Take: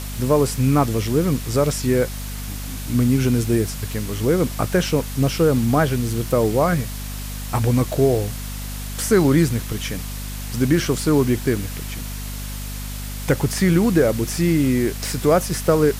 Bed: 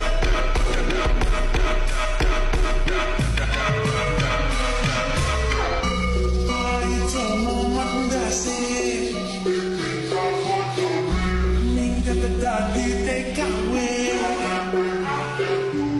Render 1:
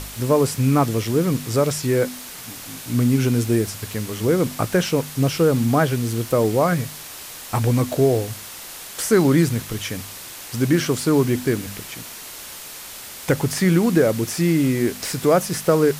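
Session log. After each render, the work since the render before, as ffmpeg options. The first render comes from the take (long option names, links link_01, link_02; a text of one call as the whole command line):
ffmpeg -i in.wav -af "bandreject=frequency=50:width_type=h:width=4,bandreject=frequency=100:width_type=h:width=4,bandreject=frequency=150:width_type=h:width=4,bandreject=frequency=200:width_type=h:width=4,bandreject=frequency=250:width_type=h:width=4" out.wav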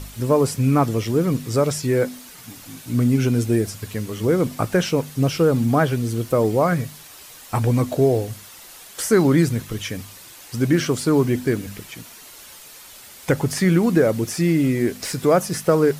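ffmpeg -i in.wav -af "afftdn=noise_reduction=8:noise_floor=-37" out.wav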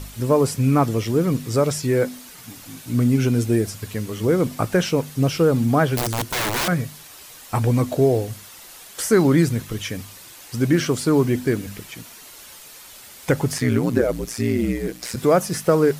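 ffmpeg -i in.wav -filter_complex "[0:a]asettb=1/sr,asplit=3[link_01][link_02][link_03];[link_01]atrim=end=5.964[link_04];[link_02]atrim=start=5.96:end=6.68,asetpts=PTS-STARTPTS,afade=type=in:duration=0.004:curve=qsin,afade=type=out:start_time=0.716:duration=0.004:curve=qsin,aeval=exprs='(mod(7.94*val(0)+1,2)-1)/7.94':channel_layout=same[link_05];[link_03]atrim=start=6.676[link_06];[link_04][link_05]acrossfade=duration=0.004:curve1=hsin:curve2=qsin[link_07];[link_07][link_06]acrossfade=duration=0.004:curve1=qsin:curve2=hsin,asplit=3[link_08][link_09][link_10];[link_08]afade=type=out:start_time=13.57:duration=0.02[link_11];[link_09]aeval=exprs='val(0)*sin(2*PI*59*n/s)':channel_layout=same,afade=type=in:start_time=13.57:duration=0.02,afade=type=out:start_time=15.15:duration=0.02[link_12];[link_10]afade=type=in:start_time=15.15:duration=0.02[link_13];[link_11][link_12][link_13]amix=inputs=3:normalize=0" out.wav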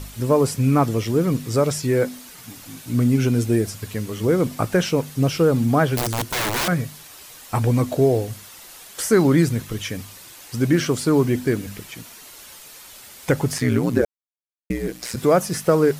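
ffmpeg -i in.wav -filter_complex "[0:a]asplit=3[link_01][link_02][link_03];[link_01]atrim=end=14.05,asetpts=PTS-STARTPTS,afade=type=out:start_time=14.046:duration=0.004:curve=hsin[link_04];[link_02]atrim=start=14.05:end=14.7,asetpts=PTS-STARTPTS,volume=0[link_05];[link_03]atrim=start=14.7,asetpts=PTS-STARTPTS,afade=type=in:duration=0.004:curve=hsin[link_06];[link_04][link_05][link_06]concat=n=3:v=0:a=1" out.wav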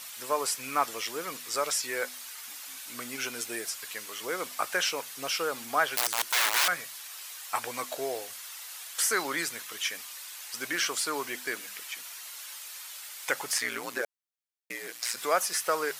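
ffmpeg -i in.wav -af "highpass=1100" out.wav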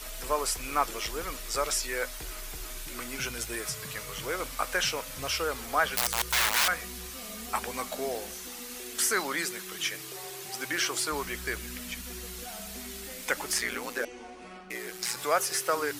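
ffmpeg -i in.wav -i bed.wav -filter_complex "[1:a]volume=-22.5dB[link_01];[0:a][link_01]amix=inputs=2:normalize=0" out.wav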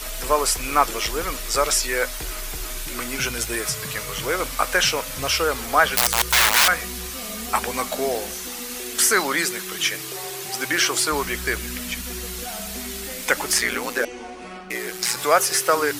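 ffmpeg -i in.wav -af "volume=9dB" out.wav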